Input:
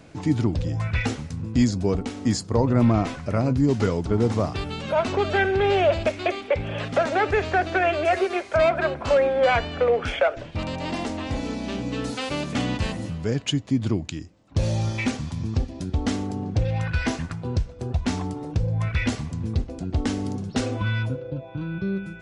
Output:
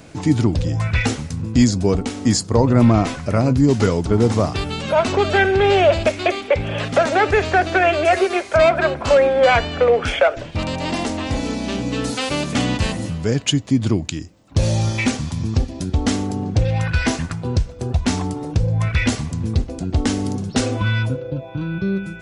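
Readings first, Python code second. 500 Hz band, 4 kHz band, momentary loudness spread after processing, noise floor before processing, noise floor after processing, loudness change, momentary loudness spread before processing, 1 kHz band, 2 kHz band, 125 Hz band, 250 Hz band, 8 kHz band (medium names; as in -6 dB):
+5.5 dB, +7.5 dB, 9 LU, -41 dBFS, -35 dBFS, +5.5 dB, 9 LU, +5.5 dB, +6.0 dB, +5.5 dB, +5.5 dB, +10.0 dB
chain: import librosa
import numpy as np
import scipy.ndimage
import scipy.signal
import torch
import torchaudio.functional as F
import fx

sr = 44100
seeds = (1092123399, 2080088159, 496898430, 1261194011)

y = fx.high_shelf(x, sr, hz=6600.0, db=8.5)
y = y * librosa.db_to_amplitude(5.5)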